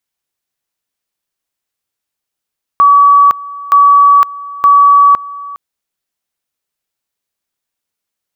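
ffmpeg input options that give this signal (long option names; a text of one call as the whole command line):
ffmpeg -f lavfi -i "aevalsrc='pow(10,(-2.5-20*gte(mod(t,0.92),0.51))/20)*sin(2*PI*1140*t)':duration=2.76:sample_rate=44100" out.wav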